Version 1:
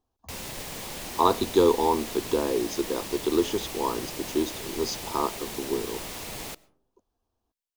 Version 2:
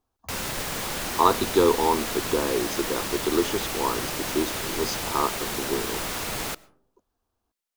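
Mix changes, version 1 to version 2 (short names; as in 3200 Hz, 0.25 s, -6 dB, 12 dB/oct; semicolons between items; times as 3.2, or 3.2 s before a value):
background +6.0 dB; master: add bell 1400 Hz +7 dB 0.63 oct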